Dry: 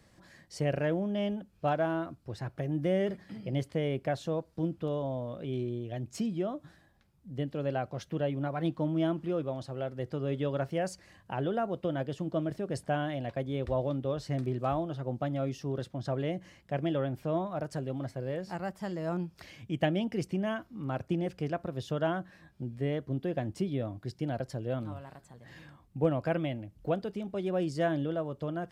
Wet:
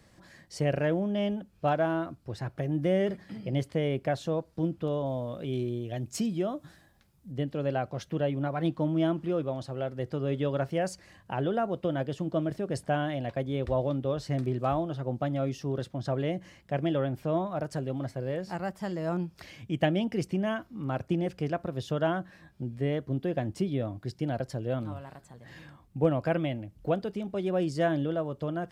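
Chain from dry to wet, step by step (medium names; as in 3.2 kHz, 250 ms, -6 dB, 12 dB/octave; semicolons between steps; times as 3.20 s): 5.06–7.32 s: treble shelf 4.8 kHz +7.5 dB; trim +2.5 dB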